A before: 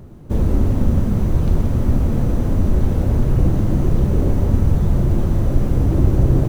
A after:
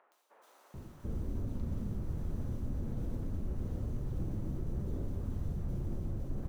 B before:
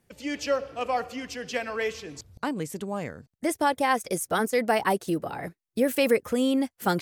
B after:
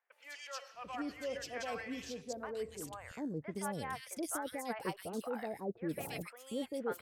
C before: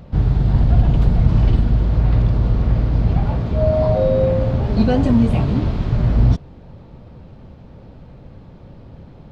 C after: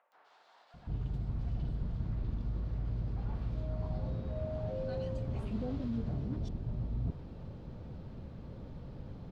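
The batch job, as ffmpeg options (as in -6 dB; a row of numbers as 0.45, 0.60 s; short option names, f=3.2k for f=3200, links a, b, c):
-filter_complex "[0:a]areverse,acompressor=threshold=-29dB:ratio=5,areverse,acrossover=split=760|2300[a][b][c];[c]adelay=120[d];[a]adelay=740[e];[e][b][d]amix=inputs=3:normalize=0,volume=-5.5dB"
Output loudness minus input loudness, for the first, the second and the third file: -20.5, -14.0, -21.5 LU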